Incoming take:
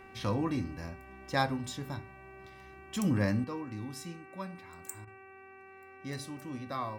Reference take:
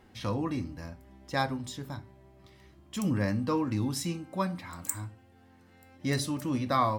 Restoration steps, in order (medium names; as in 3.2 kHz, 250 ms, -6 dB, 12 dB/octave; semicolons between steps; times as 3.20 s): de-hum 385 Hz, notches 7; interpolate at 5.05 s, 22 ms; gain correction +10.5 dB, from 3.44 s